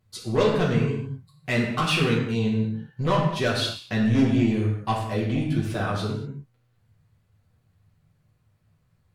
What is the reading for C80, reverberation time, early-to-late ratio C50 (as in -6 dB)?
5.5 dB, not exponential, 3.0 dB